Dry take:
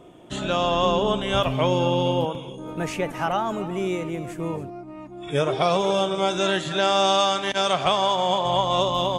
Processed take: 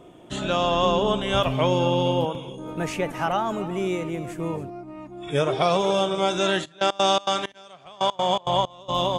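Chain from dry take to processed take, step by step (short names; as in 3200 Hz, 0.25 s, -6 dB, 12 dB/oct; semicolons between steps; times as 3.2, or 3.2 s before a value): 6.64–8.88 step gate ".xx......x.xx" 163 bpm -24 dB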